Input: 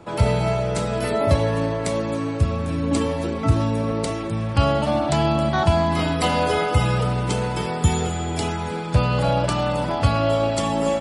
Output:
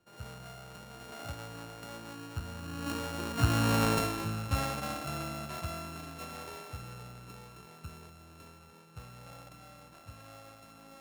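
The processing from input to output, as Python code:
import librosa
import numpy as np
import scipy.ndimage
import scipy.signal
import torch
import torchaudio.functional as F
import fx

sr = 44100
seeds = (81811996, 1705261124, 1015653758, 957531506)

y = np.r_[np.sort(x[:len(x) // 32 * 32].reshape(-1, 32), axis=1).ravel(), x[len(x) // 32 * 32:]]
y = fx.doppler_pass(y, sr, speed_mps=6, closest_m=1.5, pass_at_s=3.83)
y = F.gain(torch.from_numpy(y), -3.5).numpy()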